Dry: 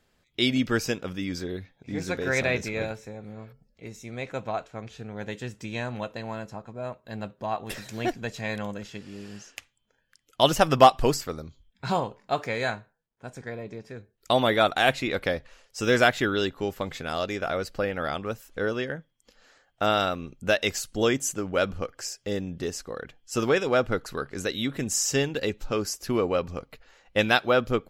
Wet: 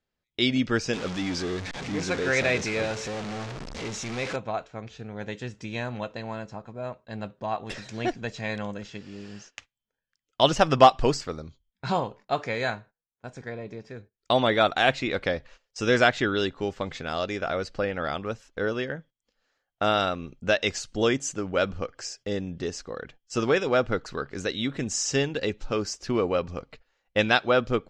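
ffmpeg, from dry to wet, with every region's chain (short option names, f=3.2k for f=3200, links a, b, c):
-filter_complex "[0:a]asettb=1/sr,asplit=3[a][b][c];[a]atrim=end=0.934[d];[b]atrim=start=0.93:end=4.36,asetpts=PTS-STARTPTS,afade=t=in:d=0.004:c=qsin,afade=t=out:st=3.426:d=0.004:c=qsin,aeval=exprs='val(0)+0.5*0.0398*sgn(val(0))':c=same,lowshelf=f=200:g=-5.5[e];[c]atrim=start=4.356[f];[d][e]acrossfade=d=0.004:c1=hsin:c2=qsin[g];[g][f]acrossfade=d=0.004:c1=qsin:c2=hsin,lowpass=f=6.9k:w=0.5412,lowpass=f=6.9k:w=1.3066,agate=range=-16dB:threshold=-48dB:ratio=16:detection=peak"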